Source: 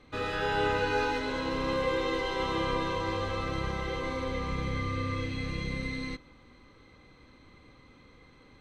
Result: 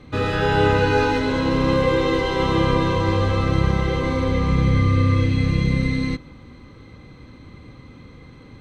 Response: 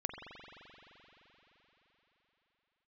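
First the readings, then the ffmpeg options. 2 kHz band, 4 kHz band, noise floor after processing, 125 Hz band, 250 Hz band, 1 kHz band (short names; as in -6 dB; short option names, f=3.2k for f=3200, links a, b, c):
+8.0 dB, +7.5 dB, -44 dBFS, +17.0 dB, +14.0 dB, +8.5 dB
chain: -af "equalizer=f=120:t=o:w=2.7:g=10.5,volume=7.5dB"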